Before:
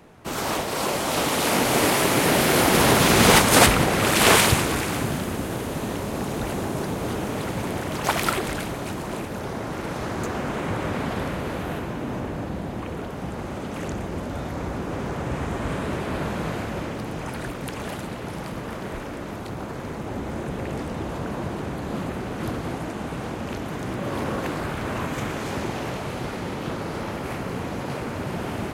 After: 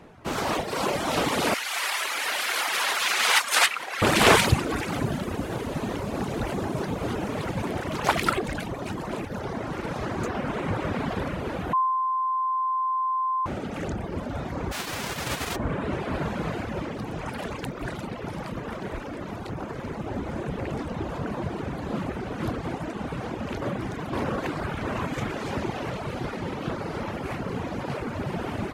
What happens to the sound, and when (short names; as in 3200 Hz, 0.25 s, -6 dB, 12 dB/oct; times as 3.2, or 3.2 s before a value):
1.54–4.02 HPF 1300 Hz
11.73–13.46 bleep 1040 Hz -19.5 dBFS
14.71–15.55 spectral whitening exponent 0.3
17.38–17.95 reverse
23.62–24.13 reverse
whole clip: reverb removal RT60 1.1 s; high shelf 7200 Hz -11 dB; gain +1.5 dB